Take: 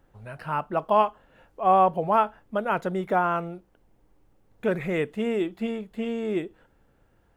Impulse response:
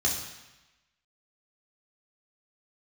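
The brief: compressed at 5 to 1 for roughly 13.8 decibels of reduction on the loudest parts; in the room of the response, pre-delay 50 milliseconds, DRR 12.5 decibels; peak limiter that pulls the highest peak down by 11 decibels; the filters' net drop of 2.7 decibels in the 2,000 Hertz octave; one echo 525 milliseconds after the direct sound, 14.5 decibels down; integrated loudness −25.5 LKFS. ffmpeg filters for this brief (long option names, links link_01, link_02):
-filter_complex "[0:a]equalizer=frequency=2000:width_type=o:gain=-4,acompressor=threshold=-31dB:ratio=5,alimiter=level_in=8dB:limit=-24dB:level=0:latency=1,volume=-8dB,aecho=1:1:525:0.188,asplit=2[link_01][link_02];[1:a]atrim=start_sample=2205,adelay=50[link_03];[link_02][link_03]afir=irnorm=-1:irlink=0,volume=-21dB[link_04];[link_01][link_04]amix=inputs=2:normalize=0,volume=15.5dB"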